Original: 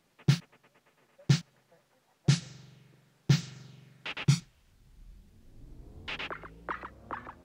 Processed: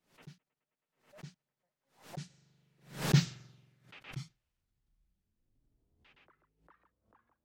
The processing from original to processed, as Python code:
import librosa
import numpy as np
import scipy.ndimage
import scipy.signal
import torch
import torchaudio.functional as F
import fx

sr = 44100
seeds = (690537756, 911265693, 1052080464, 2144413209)

y = fx.doppler_pass(x, sr, speed_mps=17, closest_m=1.9, pass_at_s=3.21)
y = fx.pre_swell(y, sr, db_per_s=140.0)